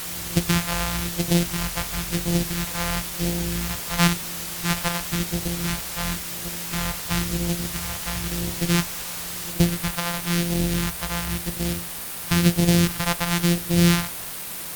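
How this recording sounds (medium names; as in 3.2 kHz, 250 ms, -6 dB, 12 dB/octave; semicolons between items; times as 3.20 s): a buzz of ramps at a fixed pitch in blocks of 256 samples; phasing stages 2, 0.97 Hz, lowest notch 290–1200 Hz; a quantiser's noise floor 6-bit, dither triangular; Opus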